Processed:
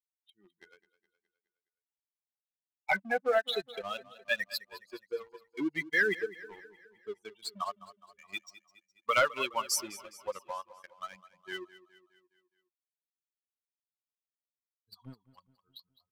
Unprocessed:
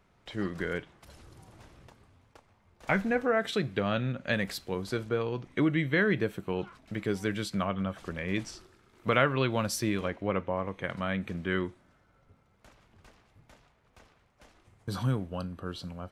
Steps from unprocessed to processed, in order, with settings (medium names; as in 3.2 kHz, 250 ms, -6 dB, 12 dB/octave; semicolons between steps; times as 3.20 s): expander on every frequency bin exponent 3; high-pass 550 Hz 12 dB/octave; waveshaping leveller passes 2; on a send: feedback delay 208 ms, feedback 52%, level -17 dB